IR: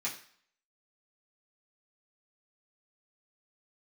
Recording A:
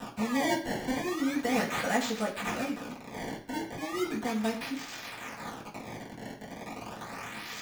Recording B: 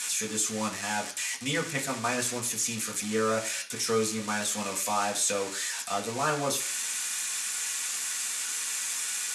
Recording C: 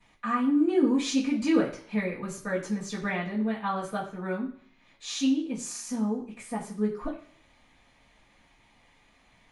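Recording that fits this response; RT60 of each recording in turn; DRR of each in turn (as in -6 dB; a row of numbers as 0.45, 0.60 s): A; 0.55, 0.55, 0.55 s; -8.0, -1.0, -16.5 dB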